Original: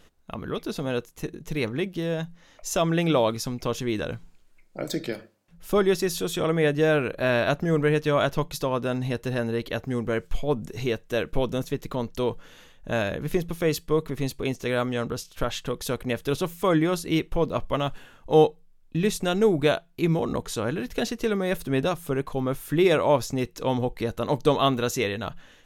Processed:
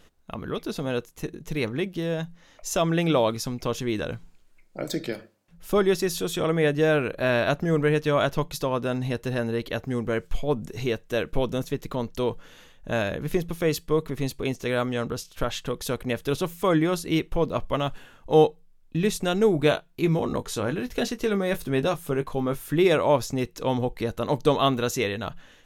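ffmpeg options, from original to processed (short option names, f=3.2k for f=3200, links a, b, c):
-filter_complex "[0:a]asettb=1/sr,asplit=3[a][b][c];[a]atrim=end=19.524[d];[b]atrim=start=19.52:end=22.64,asetpts=PTS-STARTPTS,afade=t=in:d=0.004:c=qsin,afade=t=out:st=3.116:d=0.004:c=qsin,asplit=2[e][f];[f]adelay=20,volume=-11dB[g];[e][g]amix=inputs=2:normalize=0,atrim=end_sample=137592[h];[c]atrim=start=22.636[i];[d][h]acrossfade=d=0.004:c1=hsin:c2=qsin[j];[j][i]acrossfade=d=0.004:c1=qsin:c2=hsin"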